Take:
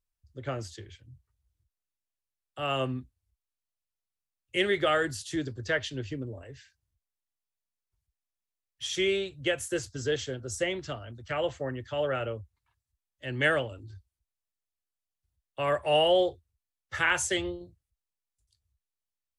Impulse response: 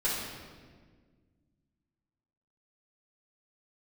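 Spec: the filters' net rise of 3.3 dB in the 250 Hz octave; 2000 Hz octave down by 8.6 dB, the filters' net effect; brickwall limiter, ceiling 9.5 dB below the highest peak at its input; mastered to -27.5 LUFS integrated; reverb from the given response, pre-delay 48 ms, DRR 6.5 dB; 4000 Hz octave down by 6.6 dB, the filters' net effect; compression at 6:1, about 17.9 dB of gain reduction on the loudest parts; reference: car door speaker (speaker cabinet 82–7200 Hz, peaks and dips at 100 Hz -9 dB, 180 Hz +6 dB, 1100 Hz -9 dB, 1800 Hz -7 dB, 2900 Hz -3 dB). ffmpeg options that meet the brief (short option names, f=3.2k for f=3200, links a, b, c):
-filter_complex "[0:a]equalizer=f=250:t=o:g=4.5,equalizer=f=2k:t=o:g=-4.5,equalizer=f=4k:t=o:g=-3.5,acompressor=threshold=-40dB:ratio=6,alimiter=level_in=13.5dB:limit=-24dB:level=0:latency=1,volume=-13.5dB,asplit=2[a][b];[1:a]atrim=start_sample=2205,adelay=48[c];[b][c]afir=irnorm=-1:irlink=0,volume=-15dB[d];[a][d]amix=inputs=2:normalize=0,highpass=82,equalizer=f=100:t=q:w=4:g=-9,equalizer=f=180:t=q:w=4:g=6,equalizer=f=1.1k:t=q:w=4:g=-9,equalizer=f=1.8k:t=q:w=4:g=-7,equalizer=f=2.9k:t=q:w=4:g=-3,lowpass=f=7.2k:w=0.5412,lowpass=f=7.2k:w=1.3066,volume=20dB"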